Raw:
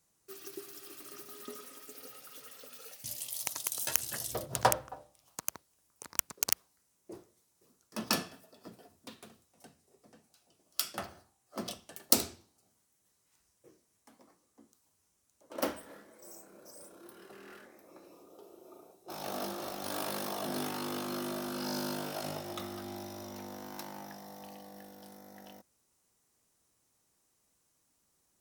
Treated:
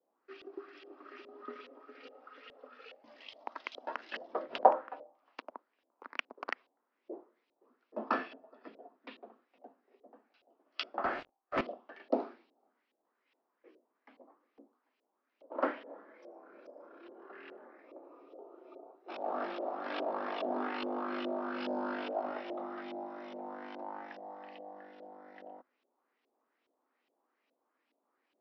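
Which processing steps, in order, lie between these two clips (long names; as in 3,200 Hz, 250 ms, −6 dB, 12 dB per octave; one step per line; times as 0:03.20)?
Chebyshev band-pass filter 250–5,100 Hz, order 4
0:11.04–0:11.61: leveller curve on the samples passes 5
auto-filter low-pass saw up 2.4 Hz 520–3,100 Hz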